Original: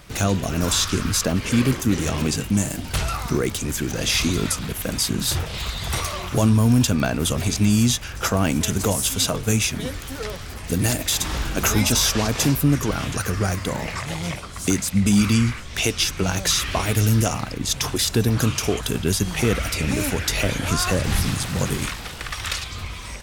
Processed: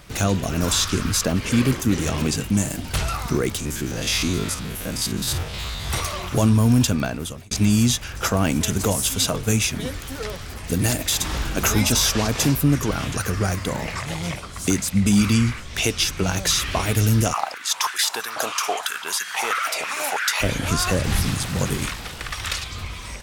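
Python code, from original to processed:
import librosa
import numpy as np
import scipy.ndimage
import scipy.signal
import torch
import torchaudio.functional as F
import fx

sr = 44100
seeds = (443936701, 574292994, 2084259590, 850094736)

y = fx.spec_steps(x, sr, hold_ms=50, at=(3.59, 5.88), fade=0.02)
y = fx.filter_held_highpass(y, sr, hz=6.1, low_hz=680.0, high_hz=1600.0, at=(17.32, 20.4), fade=0.02)
y = fx.edit(y, sr, fx.fade_out_span(start_s=6.86, length_s=0.65), tone=tone)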